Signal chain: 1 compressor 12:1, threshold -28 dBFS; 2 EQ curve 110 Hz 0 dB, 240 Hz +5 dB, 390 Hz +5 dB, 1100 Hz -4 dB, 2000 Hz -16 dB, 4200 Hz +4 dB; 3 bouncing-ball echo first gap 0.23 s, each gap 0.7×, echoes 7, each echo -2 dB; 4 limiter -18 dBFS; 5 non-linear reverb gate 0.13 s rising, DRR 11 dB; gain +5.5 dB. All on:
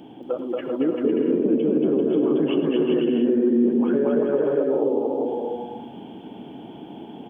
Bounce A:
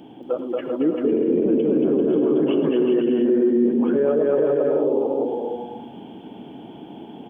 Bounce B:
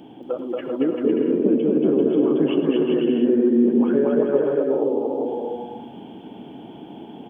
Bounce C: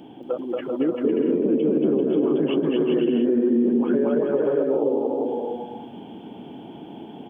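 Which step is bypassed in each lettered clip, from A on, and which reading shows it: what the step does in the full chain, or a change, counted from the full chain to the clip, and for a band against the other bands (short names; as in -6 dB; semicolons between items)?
1, mean gain reduction 3.0 dB; 4, crest factor change +2.0 dB; 5, crest factor change -2.5 dB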